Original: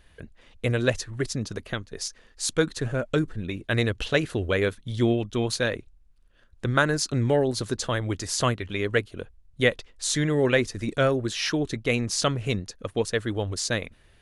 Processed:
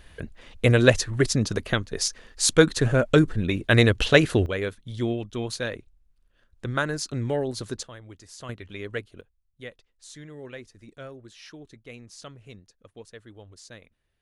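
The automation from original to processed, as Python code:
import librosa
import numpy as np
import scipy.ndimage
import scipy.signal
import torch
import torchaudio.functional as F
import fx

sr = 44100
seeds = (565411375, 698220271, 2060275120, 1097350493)

y = fx.gain(x, sr, db=fx.steps((0.0, 6.5), (4.46, -4.5), (7.83, -17.0), (8.49, -8.5), (9.21, -19.0)))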